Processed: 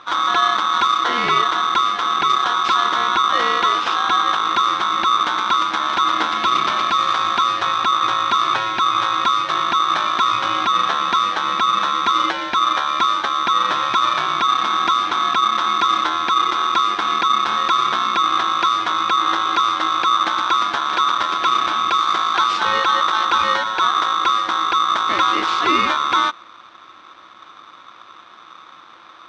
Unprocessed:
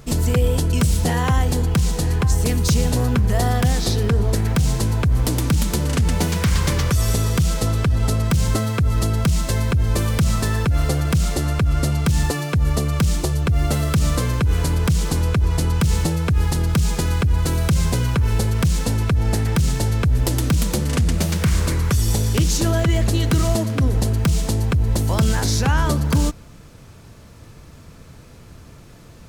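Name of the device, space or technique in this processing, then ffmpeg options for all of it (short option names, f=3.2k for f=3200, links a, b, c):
ring modulator pedal into a guitar cabinet: -af "aeval=exprs='val(0)*sgn(sin(2*PI*1200*n/s))':c=same,highpass=110,equalizer=f=130:t=q:w=4:g=-8,equalizer=f=330:t=q:w=4:g=9,equalizer=f=2.2k:t=q:w=4:g=4,lowpass=f=4.3k:w=0.5412,lowpass=f=4.3k:w=1.3066"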